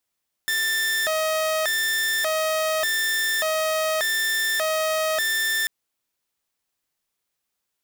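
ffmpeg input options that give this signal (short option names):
-f lavfi -i "aevalsrc='0.119*(2*mod((1205.5*t+574.5/0.85*(0.5-abs(mod(0.85*t,1)-0.5))),1)-1)':d=5.19:s=44100"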